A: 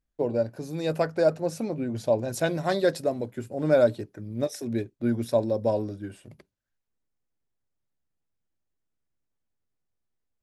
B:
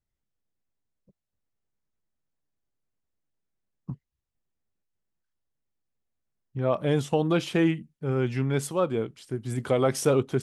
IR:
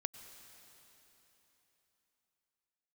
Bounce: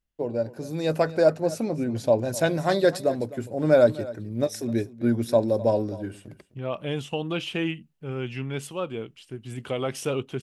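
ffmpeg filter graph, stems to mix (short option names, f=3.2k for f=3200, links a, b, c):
-filter_complex "[0:a]dynaudnorm=f=230:g=5:m=5.5dB,volume=-2.5dB,asplit=2[a][b];[b]volume=-17.5dB[c];[1:a]equalizer=f=2.8k:w=2.9:g=13,volume=-5.5dB[d];[c]aecho=0:1:256:1[e];[a][d][e]amix=inputs=3:normalize=0"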